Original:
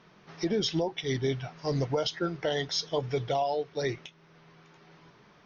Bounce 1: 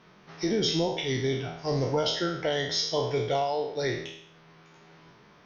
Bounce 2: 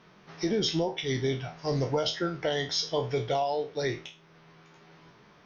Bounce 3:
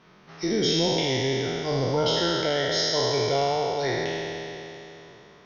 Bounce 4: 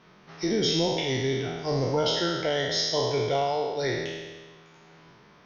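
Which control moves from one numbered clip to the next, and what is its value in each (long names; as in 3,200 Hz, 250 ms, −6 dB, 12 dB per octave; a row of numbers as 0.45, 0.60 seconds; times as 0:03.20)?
peak hold with a decay on every bin, RT60: 0.7, 0.31, 3.15, 1.46 seconds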